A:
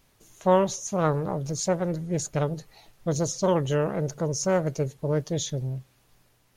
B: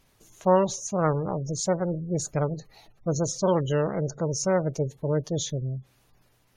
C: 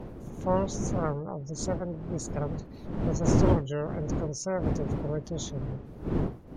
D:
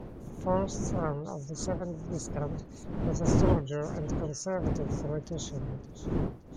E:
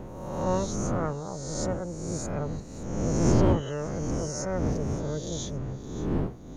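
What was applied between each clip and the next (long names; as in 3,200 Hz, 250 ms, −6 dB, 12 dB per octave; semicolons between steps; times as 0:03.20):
gate on every frequency bin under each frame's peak −30 dB strong
wind on the microphone 270 Hz −24 dBFS; level −7 dB
delay with a high-pass on its return 569 ms, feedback 31%, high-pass 1,700 Hz, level −14 dB; level −2 dB
peak hold with a rise ahead of every peak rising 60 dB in 1.17 s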